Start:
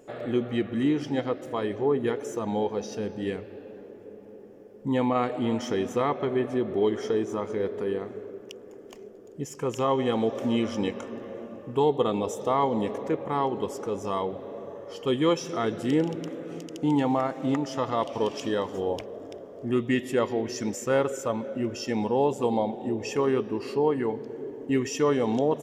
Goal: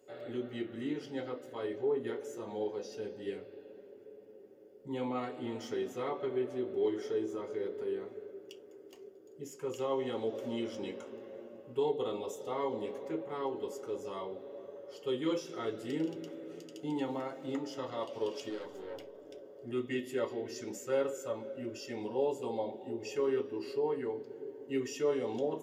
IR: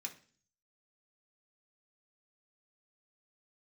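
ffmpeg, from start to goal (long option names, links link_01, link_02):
-filter_complex "[0:a]asettb=1/sr,asplit=3[link_01][link_02][link_03];[link_01]atrim=end=18.494[link_04];[link_02]atrim=start=18.49:end=19.27,asetpts=PTS-STARTPTS,afade=type=in:duration=0.004:curve=qsin,afade=type=out:start_time=0.776:duration=0.004:curve=qsin,aeval=exprs='(tanh(25.1*val(0)+0.45)-tanh(0.45))/25.1':channel_layout=same[link_05];[link_03]atrim=start=19.266[link_06];[link_04][link_05]acrossfade=duration=0.004:curve1=hsin:curve2=qsin[link_07];[link_07][link_06]acrossfade=duration=0.004:curve1=qsin:curve2=hsin[link_08];[1:a]atrim=start_sample=2205,asetrate=83790,aresample=44100[link_09];[link_08][link_09]afir=irnorm=-1:irlink=0"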